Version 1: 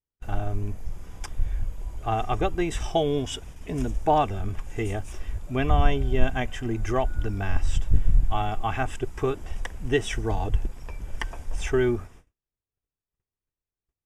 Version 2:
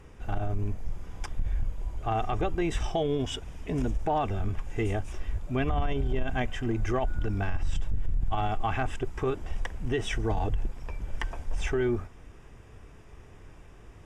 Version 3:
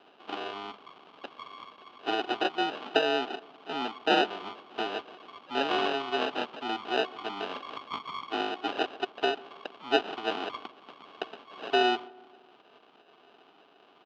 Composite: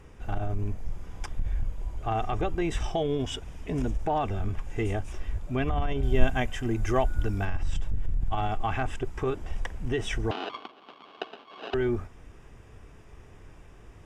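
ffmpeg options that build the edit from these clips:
-filter_complex "[1:a]asplit=3[s0][s1][s2];[s0]atrim=end=6.032[s3];[0:a]atrim=start=6.028:end=7.452[s4];[s1]atrim=start=7.448:end=10.312[s5];[2:a]atrim=start=10.308:end=11.742[s6];[s2]atrim=start=11.738[s7];[s3][s4]acrossfade=d=0.004:c1=hsin:c2=hsin[s8];[s8][s5]acrossfade=d=0.004:c1=hsin:c2=hsin[s9];[s9][s6]acrossfade=d=0.004:c1=hsin:c2=hsin[s10];[s10][s7]acrossfade=d=0.004:c1=hsin:c2=hsin"

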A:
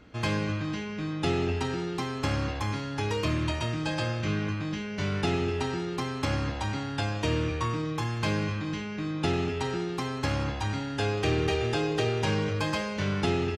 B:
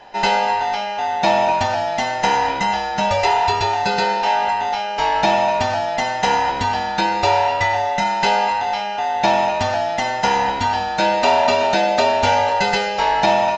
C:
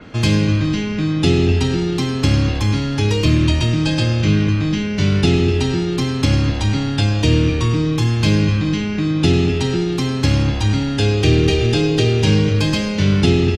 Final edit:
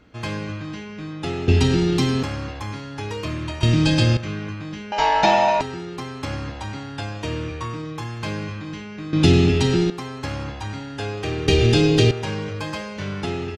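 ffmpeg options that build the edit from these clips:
-filter_complex "[2:a]asplit=4[s0][s1][s2][s3];[0:a]asplit=6[s4][s5][s6][s7][s8][s9];[s4]atrim=end=1.482[s10];[s0]atrim=start=1.478:end=2.232[s11];[s5]atrim=start=2.228:end=3.632[s12];[s1]atrim=start=3.628:end=4.172[s13];[s6]atrim=start=4.168:end=4.922[s14];[1:a]atrim=start=4.918:end=5.612[s15];[s7]atrim=start=5.608:end=9.132[s16];[s2]atrim=start=9.128:end=9.902[s17];[s8]atrim=start=9.898:end=11.482[s18];[s3]atrim=start=11.478:end=12.112[s19];[s9]atrim=start=12.108[s20];[s10][s11]acrossfade=d=0.004:c1=hsin:c2=hsin[s21];[s21][s12]acrossfade=d=0.004:c1=hsin:c2=hsin[s22];[s22][s13]acrossfade=d=0.004:c1=hsin:c2=hsin[s23];[s23][s14]acrossfade=d=0.004:c1=hsin:c2=hsin[s24];[s24][s15]acrossfade=d=0.004:c1=hsin:c2=hsin[s25];[s25][s16]acrossfade=d=0.004:c1=hsin:c2=hsin[s26];[s26][s17]acrossfade=d=0.004:c1=hsin:c2=hsin[s27];[s27][s18]acrossfade=d=0.004:c1=hsin:c2=hsin[s28];[s28][s19]acrossfade=d=0.004:c1=hsin:c2=hsin[s29];[s29][s20]acrossfade=d=0.004:c1=hsin:c2=hsin"

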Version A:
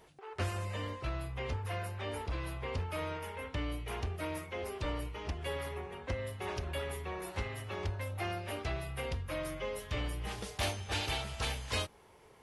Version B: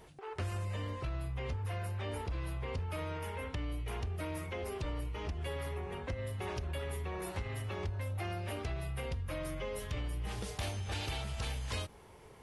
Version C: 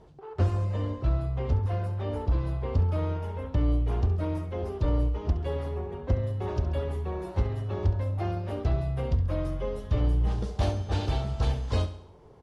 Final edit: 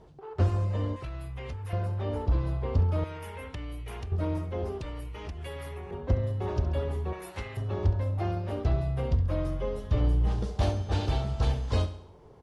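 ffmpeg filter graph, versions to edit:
-filter_complex "[1:a]asplit=3[s0][s1][s2];[2:a]asplit=5[s3][s4][s5][s6][s7];[s3]atrim=end=0.962[s8];[s0]atrim=start=0.958:end=1.732[s9];[s4]atrim=start=1.728:end=3.042[s10];[s1]atrim=start=3.038:end=4.122[s11];[s5]atrim=start=4.118:end=4.812[s12];[s2]atrim=start=4.808:end=5.912[s13];[s6]atrim=start=5.908:end=7.132[s14];[0:a]atrim=start=7.128:end=7.572[s15];[s7]atrim=start=7.568[s16];[s8][s9]acrossfade=d=0.004:c1=hsin:c2=hsin[s17];[s17][s10]acrossfade=d=0.004:c1=hsin:c2=hsin[s18];[s18][s11]acrossfade=d=0.004:c1=hsin:c2=hsin[s19];[s19][s12]acrossfade=d=0.004:c1=hsin:c2=hsin[s20];[s20][s13]acrossfade=d=0.004:c1=hsin:c2=hsin[s21];[s21][s14]acrossfade=d=0.004:c1=hsin:c2=hsin[s22];[s22][s15]acrossfade=d=0.004:c1=hsin:c2=hsin[s23];[s23][s16]acrossfade=d=0.004:c1=hsin:c2=hsin"

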